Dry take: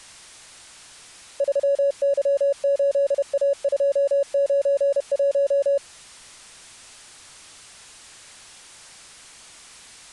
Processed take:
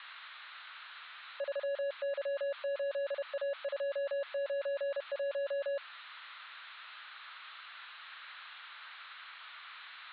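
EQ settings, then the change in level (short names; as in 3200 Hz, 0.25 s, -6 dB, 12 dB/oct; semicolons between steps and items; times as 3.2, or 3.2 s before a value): resonant high-pass 1300 Hz, resonance Q 2.8; steep low-pass 4100 Hz 96 dB/oct; -2.0 dB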